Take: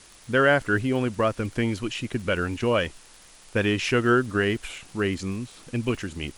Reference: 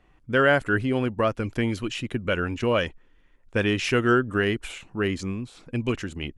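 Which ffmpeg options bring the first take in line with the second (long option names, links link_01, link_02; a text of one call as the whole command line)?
ffmpeg -i in.wav -af "adeclick=threshold=4,afwtdn=0.0035" out.wav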